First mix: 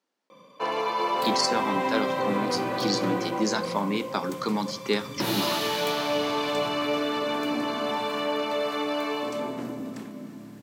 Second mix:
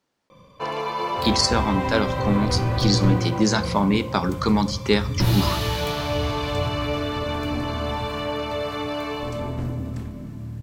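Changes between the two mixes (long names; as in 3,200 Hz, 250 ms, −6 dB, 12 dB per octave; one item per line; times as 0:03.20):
speech +5.5 dB
second sound: send −11.0 dB
master: remove high-pass filter 210 Hz 24 dB per octave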